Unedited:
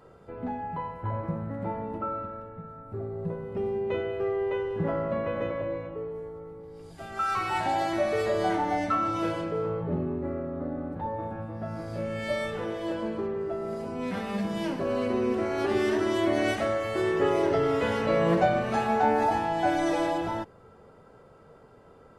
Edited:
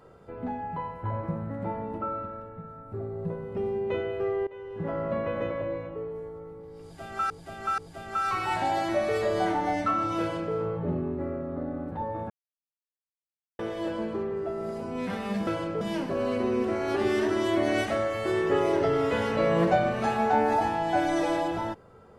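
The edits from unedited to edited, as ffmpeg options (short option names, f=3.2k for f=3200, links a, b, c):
-filter_complex "[0:a]asplit=8[a][b][c][d][e][f][g][h];[a]atrim=end=4.47,asetpts=PTS-STARTPTS,afade=t=out:st=4.466:d=0.004:c=hsin:silence=0.0944061[i];[b]atrim=start=4.47:end=7.302,asetpts=PTS-STARTPTS,afade=t=in:d=0.64:silence=0.0944061[j];[c]atrim=start=6.818:end=7.302[k];[d]atrim=start=6.818:end=11.34,asetpts=PTS-STARTPTS,afade=t=out:st=4.518:d=0.004:c=hsin[l];[e]atrim=start=11.34:end=12.63,asetpts=PTS-STARTPTS,volume=0[m];[f]atrim=start=12.63:end=14.512,asetpts=PTS-STARTPTS,afade=t=in:d=0.004:c=hsin[n];[g]atrim=start=9.238:end=9.582[o];[h]atrim=start=14.508[p];[i][j]concat=n=2:v=0:a=1[q];[q][k]acrossfade=d=0.004:c1=hsin:c2=hsin[r];[l][m][n]concat=n=3:v=0:a=1[s];[r][s]acrossfade=d=0.004:c1=hsin:c2=hsin[t];[t][o]acrossfade=d=0.004:c1=hsin:c2=hsin[u];[u][p]acrossfade=d=0.004:c1=hsin:c2=hsin"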